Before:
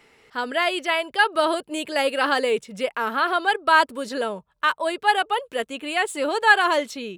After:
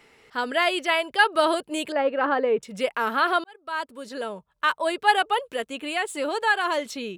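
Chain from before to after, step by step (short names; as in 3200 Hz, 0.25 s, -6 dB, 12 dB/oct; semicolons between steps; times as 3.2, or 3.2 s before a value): 1.92–2.63 LPF 1400 Hz 12 dB/oct; 3.44–4.92 fade in; 5.43–6.86 compressor 1.5:1, threshold -29 dBFS, peak gain reduction 7 dB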